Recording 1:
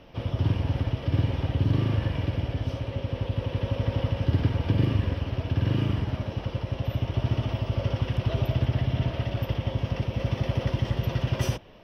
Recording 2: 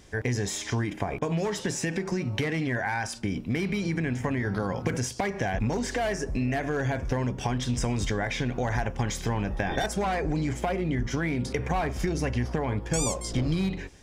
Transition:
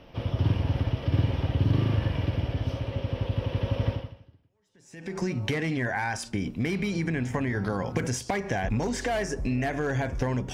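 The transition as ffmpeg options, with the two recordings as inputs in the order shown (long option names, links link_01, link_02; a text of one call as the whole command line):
ffmpeg -i cue0.wav -i cue1.wav -filter_complex "[0:a]apad=whole_dur=10.53,atrim=end=10.53,atrim=end=5.16,asetpts=PTS-STARTPTS[link_01];[1:a]atrim=start=0.8:end=7.43,asetpts=PTS-STARTPTS[link_02];[link_01][link_02]acrossfade=duration=1.26:curve1=exp:curve2=exp" out.wav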